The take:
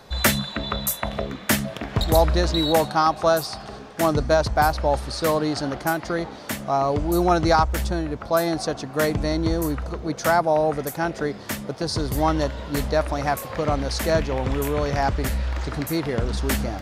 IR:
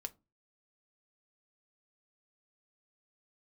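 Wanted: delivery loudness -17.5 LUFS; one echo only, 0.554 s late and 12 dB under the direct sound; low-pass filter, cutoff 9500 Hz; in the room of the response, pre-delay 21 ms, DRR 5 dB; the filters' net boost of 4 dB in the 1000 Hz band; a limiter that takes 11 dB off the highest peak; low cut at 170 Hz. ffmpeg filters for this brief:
-filter_complex "[0:a]highpass=170,lowpass=9.5k,equalizer=f=1k:t=o:g=5.5,alimiter=limit=-13.5dB:level=0:latency=1,aecho=1:1:554:0.251,asplit=2[a][b];[1:a]atrim=start_sample=2205,adelay=21[c];[b][c]afir=irnorm=-1:irlink=0,volume=-2dB[d];[a][d]amix=inputs=2:normalize=0,volume=7dB"

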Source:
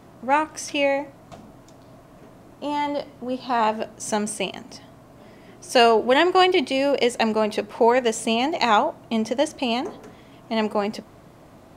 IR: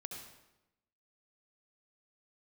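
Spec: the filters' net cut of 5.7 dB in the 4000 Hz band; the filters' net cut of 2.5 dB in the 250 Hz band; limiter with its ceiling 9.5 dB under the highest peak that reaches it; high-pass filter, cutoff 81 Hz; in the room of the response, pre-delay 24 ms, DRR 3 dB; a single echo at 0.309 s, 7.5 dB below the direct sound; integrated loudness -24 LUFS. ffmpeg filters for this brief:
-filter_complex "[0:a]highpass=81,equalizer=f=250:t=o:g=-3,equalizer=f=4k:t=o:g=-9,alimiter=limit=-16dB:level=0:latency=1,aecho=1:1:309:0.422,asplit=2[a][b];[1:a]atrim=start_sample=2205,adelay=24[c];[b][c]afir=irnorm=-1:irlink=0,volume=-0.5dB[d];[a][d]amix=inputs=2:normalize=0,volume=1dB"

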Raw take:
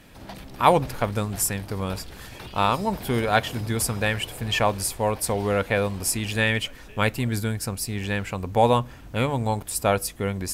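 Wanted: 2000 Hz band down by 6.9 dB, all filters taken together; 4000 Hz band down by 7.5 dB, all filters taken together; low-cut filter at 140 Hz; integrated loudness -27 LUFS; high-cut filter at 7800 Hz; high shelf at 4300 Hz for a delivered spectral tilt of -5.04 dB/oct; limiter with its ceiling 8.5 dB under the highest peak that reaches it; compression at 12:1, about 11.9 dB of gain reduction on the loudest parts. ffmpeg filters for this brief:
-af "highpass=140,lowpass=7.8k,equalizer=f=2k:t=o:g=-6.5,equalizer=f=4k:t=o:g=-3,highshelf=f=4.3k:g=-8,acompressor=threshold=-25dB:ratio=12,volume=7dB,alimiter=limit=-14.5dB:level=0:latency=1"

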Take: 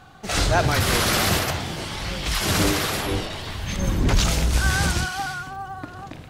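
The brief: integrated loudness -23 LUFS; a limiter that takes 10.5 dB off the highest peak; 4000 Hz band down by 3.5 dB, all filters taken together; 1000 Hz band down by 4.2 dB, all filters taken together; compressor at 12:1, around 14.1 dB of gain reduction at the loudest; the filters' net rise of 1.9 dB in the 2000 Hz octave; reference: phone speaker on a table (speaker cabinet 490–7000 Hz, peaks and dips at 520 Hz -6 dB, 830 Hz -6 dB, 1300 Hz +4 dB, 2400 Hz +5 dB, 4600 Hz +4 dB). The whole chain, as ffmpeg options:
-af "equalizer=f=1k:t=o:g=-6.5,equalizer=f=2k:t=o:g=4,equalizer=f=4k:t=o:g=-8,acompressor=threshold=-29dB:ratio=12,alimiter=level_in=7dB:limit=-24dB:level=0:latency=1,volume=-7dB,highpass=f=490:w=0.5412,highpass=f=490:w=1.3066,equalizer=f=520:t=q:w=4:g=-6,equalizer=f=830:t=q:w=4:g=-6,equalizer=f=1.3k:t=q:w=4:g=4,equalizer=f=2.4k:t=q:w=4:g=5,equalizer=f=4.6k:t=q:w=4:g=4,lowpass=f=7k:w=0.5412,lowpass=f=7k:w=1.3066,volume=18dB"

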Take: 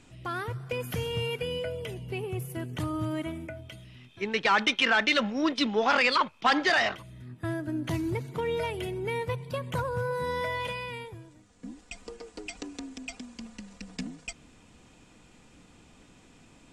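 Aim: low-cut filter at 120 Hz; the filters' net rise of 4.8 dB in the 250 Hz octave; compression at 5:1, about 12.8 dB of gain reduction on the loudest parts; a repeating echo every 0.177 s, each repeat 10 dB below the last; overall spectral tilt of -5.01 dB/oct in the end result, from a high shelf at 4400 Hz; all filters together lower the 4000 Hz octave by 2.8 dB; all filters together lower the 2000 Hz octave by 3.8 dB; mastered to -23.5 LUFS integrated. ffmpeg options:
-af "highpass=120,equalizer=f=250:t=o:g=6.5,equalizer=f=2k:t=o:g=-5,equalizer=f=4k:t=o:g=-5,highshelf=f=4.4k:g=6.5,acompressor=threshold=-34dB:ratio=5,aecho=1:1:177|354|531|708:0.316|0.101|0.0324|0.0104,volume=14dB"

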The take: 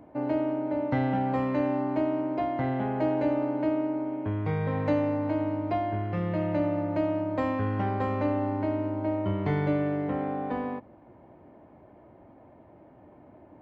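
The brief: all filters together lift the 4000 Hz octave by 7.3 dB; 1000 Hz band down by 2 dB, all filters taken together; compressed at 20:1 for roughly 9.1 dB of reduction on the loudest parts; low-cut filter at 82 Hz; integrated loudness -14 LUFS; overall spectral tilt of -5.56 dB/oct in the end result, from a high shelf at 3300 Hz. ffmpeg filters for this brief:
-af "highpass=82,equalizer=f=1k:t=o:g=-3.5,highshelf=f=3.3k:g=5,equalizer=f=4k:t=o:g=7,acompressor=threshold=-31dB:ratio=20,volume=21.5dB"

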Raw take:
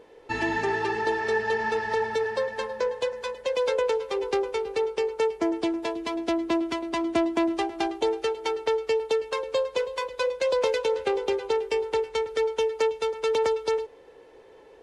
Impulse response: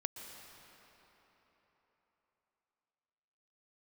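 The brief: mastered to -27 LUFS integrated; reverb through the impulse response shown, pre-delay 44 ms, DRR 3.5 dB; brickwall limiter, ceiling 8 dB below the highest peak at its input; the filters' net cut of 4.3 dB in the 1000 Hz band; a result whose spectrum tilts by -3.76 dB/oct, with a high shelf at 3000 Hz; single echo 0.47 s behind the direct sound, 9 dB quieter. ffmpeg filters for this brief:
-filter_complex "[0:a]equalizer=f=1k:t=o:g=-5.5,highshelf=f=3k:g=3.5,alimiter=limit=-22.5dB:level=0:latency=1,aecho=1:1:470:0.355,asplit=2[a][b];[1:a]atrim=start_sample=2205,adelay=44[c];[b][c]afir=irnorm=-1:irlink=0,volume=-3dB[d];[a][d]amix=inputs=2:normalize=0,volume=2.5dB"

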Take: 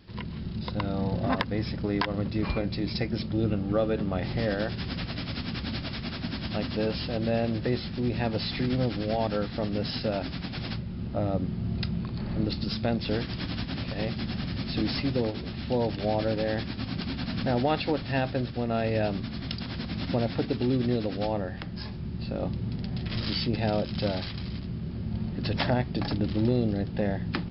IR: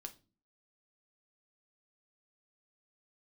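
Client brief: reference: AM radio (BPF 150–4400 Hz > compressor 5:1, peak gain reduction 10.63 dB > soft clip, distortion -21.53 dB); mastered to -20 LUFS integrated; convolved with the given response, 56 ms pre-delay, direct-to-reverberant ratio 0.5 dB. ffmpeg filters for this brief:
-filter_complex "[0:a]asplit=2[a][b];[1:a]atrim=start_sample=2205,adelay=56[c];[b][c]afir=irnorm=-1:irlink=0,volume=4.5dB[d];[a][d]amix=inputs=2:normalize=0,highpass=150,lowpass=4.4k,acompressor=threshold=-26dB:ratio=5,asoftclip=threshold=-21dB,volume=12.5dB"

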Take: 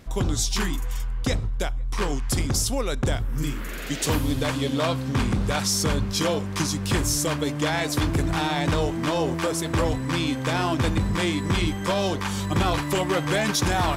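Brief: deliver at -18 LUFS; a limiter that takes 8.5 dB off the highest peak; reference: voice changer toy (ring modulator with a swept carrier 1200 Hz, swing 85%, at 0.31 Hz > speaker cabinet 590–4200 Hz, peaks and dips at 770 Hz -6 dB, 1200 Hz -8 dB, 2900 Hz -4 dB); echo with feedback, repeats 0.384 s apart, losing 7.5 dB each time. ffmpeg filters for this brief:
-af "alimiter=limit=-22dB:level=0:latency=1,aecho=1:1:384|768|1152|1536|1920:0.422|0.177|0.0744|0.0312|0.0131,aeval=exprs='val(0)*sin(2*PI*1200*n/s+1200*0.85/0.31*sin(2*PI*0.31*n/s))':c=same,highpass=590,equalizer=f=770:t=q:w=4:g=-6,equalizer=f=1.2k:t=q:w=4:g=-8,equalizer=f=2.9k:t=q:w=4:g=-4,lowpass=f=4.2k:w=0.5412,lowpass=f=4.2k:w=1.3066,volume=16dB"

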